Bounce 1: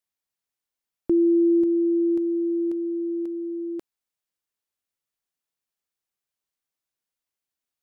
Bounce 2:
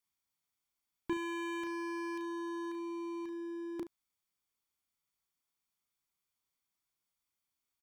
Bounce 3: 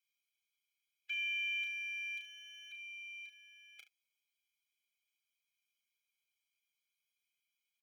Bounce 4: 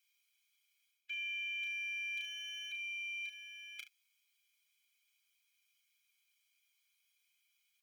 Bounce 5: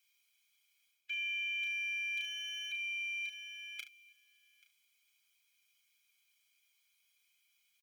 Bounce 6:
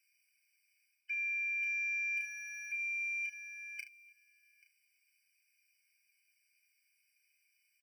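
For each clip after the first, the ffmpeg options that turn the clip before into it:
ffmpeg -i in.wav -af "aecho=1:1:0.9:0.4,volume=29dB,asoftclip=hard,volume=-29dB,aecho=1:1:34|72:0.473|0.188,volume=-1.5dB" out.wav
ffmpeg -i in.wav -af "highpass=frequency=2600:width_type=q:width=9.8,aecho=1:1:6.3:0.61,afftfilt=real='re*eq(mod(floor(b*sr/1024/420),2),1)':imag='im*eq(mod(floor(b*sr/1024/420),2),1)':win_size=1024:overlap=0.75,volume=-2.5dB" out.wav
ffmpeg -i in.wav -af "highpass=1400,areverse,acompressor=threshold=-49dB:ratio=6,areverse,volume=9.5dB" out.wav
ffmpeg -i in.wav -af "aecho=1:1:833:0.0708,volume=3dB" out.wav
ffmpeg -i in.wav -af "afftfilt=real='re*eq(mod(floor(b*sr/1024/1500),2),1)':imag='im*eq(mod(floor(b*sr/1024/1500),2),1)':win_size=1024:overlap=0.75,volume=2dB" out.wav

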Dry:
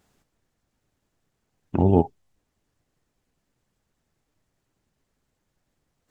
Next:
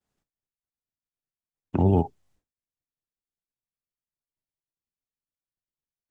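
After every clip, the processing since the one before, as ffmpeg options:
ffmpeg -i in.wav -filter_complex "[0:a]agate=range=-33dB:threshold=-57dB:ratio=3:detection=peak,acrossover=split=180|910[link_01][link_02][link_03];[link_02]alimiter=limit=-16dB:level=0:latency=1[link_04];[link_01][link_04][link_03]amix=inputs=3:normalize=0" out.wav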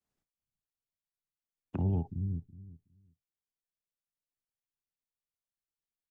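ffmpeg -i in.wav -filter_complex "[0:a]acrossover=split=210[link_01][link_02];[link_01]aecho=1:1:370|740|1110:0.631|0.101|0.0162[link_03];[link_02]acompressor=threshold=-32dB:ratio=12[link_04];[link_03][link_04]amix=inputs=2:normalize=0,volume=-7dB" out.wav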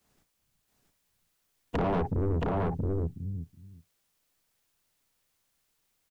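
ffmpeg -i in.wav -af "aeval=exprs='0.1*sin(PI/2*5.01*val(0)/0.1)':channel_layout=same,aecho=1:1:674:0.708,asoftclip=type=tanh:threshold=-24dB" out.wav

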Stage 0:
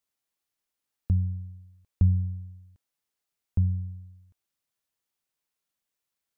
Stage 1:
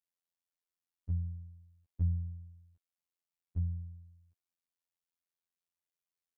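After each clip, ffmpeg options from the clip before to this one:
ffmpeg -i in.wav -af "afftfilt=real='hypot(re,im)*cos(PI*b)':imag='0':win_size=2048:overlap=0.75,volume=-8.5dB" out.wav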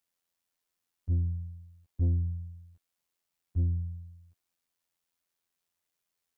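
ffmpeg -i in.wav -af "asoftclip=type=tanh:threshold=-31dB,volume=9dB" out.wav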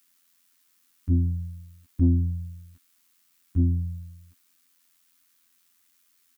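ffmpeg -i in.wav -af "firequalizer=gain_entry='entry(130,0);entry(260,13);entry(470,-7);entry(1200,10)':delay=0.05:min_phase=1,crystalizer=i=0.5:c=0,volume=5dB" out.wav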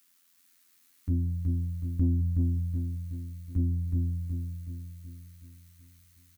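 ffmpeg -i in.wav -filter_complex "[0:a]acompressor=threshold=-29dB:ratio=2,asplit=2[link_01][link_02];[link_02]aecho=0:1:372|744|1116|1488|1860|2232|2604:0.668|0.341|0.174|0.0887|0.0452|0.0231|0.0118[link_03];[link_01][link_03]amix=inputs=2:normalize=0" out.wav

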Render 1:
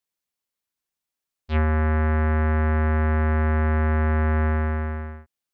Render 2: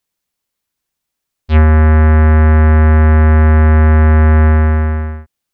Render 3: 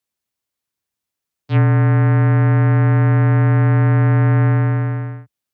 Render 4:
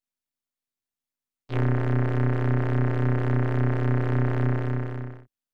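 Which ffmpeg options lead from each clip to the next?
ffmpeg -i in.wav -af "lowshelf=frequency=200:gain=5.5,volume=9dB" out.wav
ffmpeg -i in.wav -af "afreqshift=45,volume=-6dB" out.wav
ffmpeg -i in.wav -af "aeval=exprs='if(lt(val(0),0),0.251*val(0),val(0))':channel_layout=same,tremolo=f=250:d=0.667,volume=-4dB" out.wav

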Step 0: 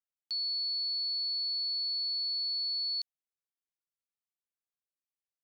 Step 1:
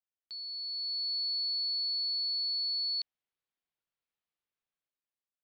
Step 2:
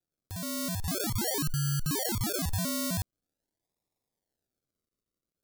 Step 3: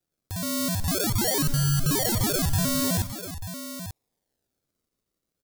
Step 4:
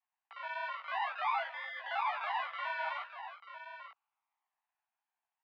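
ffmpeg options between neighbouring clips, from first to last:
ffmpeg -i in.wav -af "lowpass=frequency=4200:width=0.5412,lowpass=frequency=4200:width=1.3066,dynaudnorm=framelen=230:gausssize=7:maxgain=9.5dB,volume=-5dB" out.wav
ffmpeg -i in.wav -af "acrusher=samples=41:mix=1:aa=0.000001:lfo=1:lforange=24.6:lforate=0.45,aexciter=amount=4.7:drive=3.1:freq=3800,alimiter=limit=-24dB:level=0:latency=1,volume=3.5dB" out.wav
ffmpeg -i in.wav -af "aecho=1:1:100|291|889:0.133|0.112|0.282,volume=6dB" out.wav
ffmpeg -i in.wav -af "highpass=frequency=400:width_type=q:width=0.5412,highpass=frequency=400:width_type=q:width=1.307,lowpass=frequency=2600:width_type=q:width=0.5176,lowpass=frequency=2600:width_type=q:width=0.7071,lowpass=frequency=2600:width_type=q:width=1.932,afreqshift=390,flanger=delay=16:depth=3.5:speed=2.9" out.wav

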